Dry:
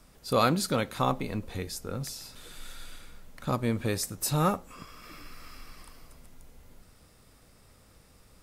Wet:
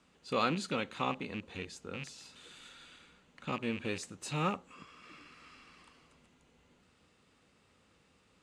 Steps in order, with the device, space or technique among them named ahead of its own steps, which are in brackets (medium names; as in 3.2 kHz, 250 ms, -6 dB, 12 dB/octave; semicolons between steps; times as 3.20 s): car door speaker with a rattle (rattle on loud lows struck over -34 dBFS, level -28 dBFS; cabinet simulation 110–7200 Hz, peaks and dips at 120 Hz -8 dB, 640 Hz -5 dB, 2.8 kHz +6 dB, 5.3 kHz -8 dB); 2.18–2.69 s: treble shelf 5.2 kHz +5.5 dB; trim -6 dB